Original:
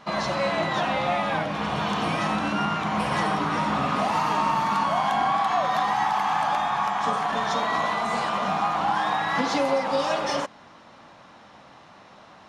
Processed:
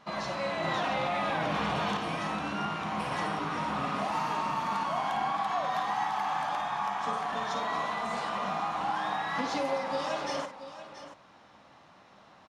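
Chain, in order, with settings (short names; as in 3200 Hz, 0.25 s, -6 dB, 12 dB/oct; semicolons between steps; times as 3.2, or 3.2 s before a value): rattling part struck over -35 dBFS, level -34 dBFS; tapped delay 54/680 ms -9.5/-12.5 dB; 0.64–1.97 fast leveller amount 100%; gain -8 dB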